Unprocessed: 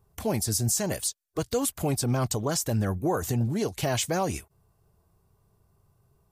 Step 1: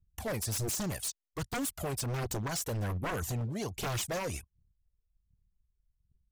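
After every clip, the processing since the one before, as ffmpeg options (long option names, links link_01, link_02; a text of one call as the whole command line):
ffmpeg -i in.wav -af "aphaser=in_gain=1:out_gain=1:delay=2.2:decay=0.57:speed=1.3:type=triangular,anlmdn=0.0251,aeval=exprs='0.075*(abs(mod(val(0)/0.075+3,4)-2)-1)':channel_layout=same,volume=-6dB" out.wav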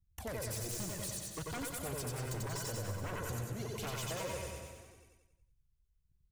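ffmpeg -i in.wav -filter_complex "[0:a]asplit=2[link_01][link_02];[link_02]aecho=0:1:92|184|276|368|460|552:0.596|0.286|0.137|0.0659|0.0316|0.0152[link_03];[link_01][link_03]amix=inputs=2:normalize=0,acompressor=threshold=-34dB:ratio=6,asplit=2[link_04][link_05];[link_05]aecho=0:1:90|198|327.6|483.1|669.7:0.631|0.398|0.251|0.158|0.1[link_06];[link_04][link_06]amix=inputs=2:normalize=0,volume=-4.5dB" out.wav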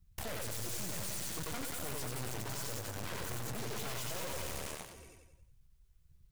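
ffmpeg -i in.wav -af "aeval=exprs='(tanh(355*val(0)+0.75)-tanh(0.75))/355':channel_layout=same,flanger=delay=4.4:depth=9:regen=-45:speed=1.4:shape=sinusoidal,aeval=exprs='0.00422*(cos(1*acos(clip(val(0)/0.00422,-1,1)))-cos(1*PI/2))+0.0015*(cos(7*acos(clip(val(0)/0.00422,-1,1)))-cos(7*PI/2))':channel_layout=same,volume=15dB" out.wav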